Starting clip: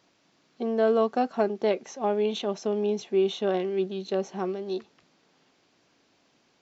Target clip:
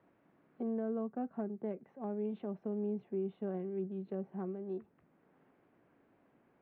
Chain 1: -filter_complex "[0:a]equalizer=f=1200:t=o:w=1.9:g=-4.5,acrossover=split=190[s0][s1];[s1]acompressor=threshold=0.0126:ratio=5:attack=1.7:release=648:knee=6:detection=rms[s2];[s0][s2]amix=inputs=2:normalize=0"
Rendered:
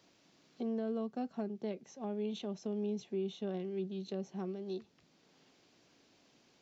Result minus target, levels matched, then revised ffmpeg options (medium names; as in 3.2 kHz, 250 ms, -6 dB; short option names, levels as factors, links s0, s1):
2 kHz band +3.5 dB
-filter_complex "[0:a]lowpass=f=1800:w=0.5412,lowpass=f=1800:w=1.3066,equalizer=f=1200:t=o:w=1.9:g=-4.5,acrossover=split=190[s0][s1];[s1]acompressor=threshold=0.0126:ratio=5:attack=1.7:release=648:knee=6:detection=rms[s2];[s0][s2]amix=inputs=2:normalize=0"